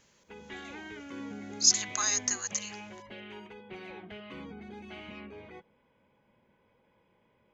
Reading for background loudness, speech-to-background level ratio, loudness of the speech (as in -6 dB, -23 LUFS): -44.5 LUFS, 18.0 dB, -26.5 LUFS